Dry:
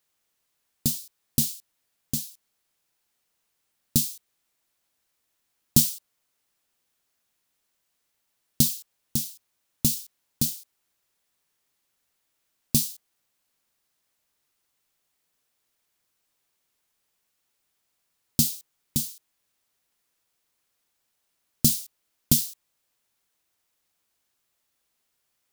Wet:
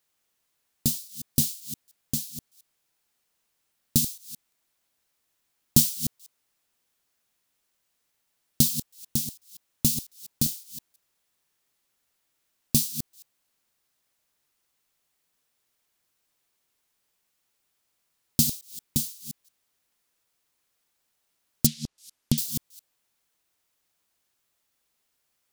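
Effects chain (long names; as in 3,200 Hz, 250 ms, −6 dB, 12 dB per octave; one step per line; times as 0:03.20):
delay that plays each chunk backwards 174 ms, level −11 dB
0:21.66–0:22.38: treble cut that deepens with the level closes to 2,900 Hz, closed at −20.5 dBFS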